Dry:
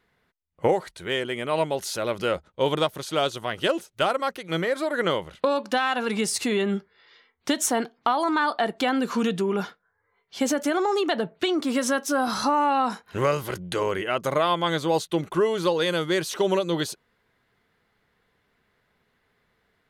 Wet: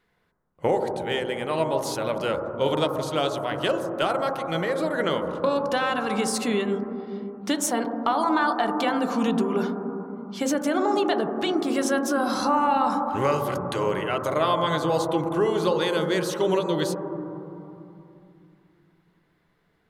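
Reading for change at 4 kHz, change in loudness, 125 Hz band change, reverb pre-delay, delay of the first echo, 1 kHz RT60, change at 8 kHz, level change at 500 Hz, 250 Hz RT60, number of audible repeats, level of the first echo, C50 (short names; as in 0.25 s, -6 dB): -2.0 dB, 0.0 dB, +1.0 dB, 5 ms, none, 2.9 s, -2.0 dB, +0.5 dB, 3.6 s, none, none, 5.5 dB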